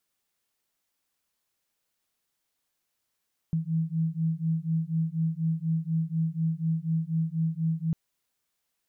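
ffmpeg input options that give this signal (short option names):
-f lavfi -i "aevalsrc='0.0398*(sin(2*PI*160*t)+sin(2*PI*164.1*t))':d=4.4:s=44100"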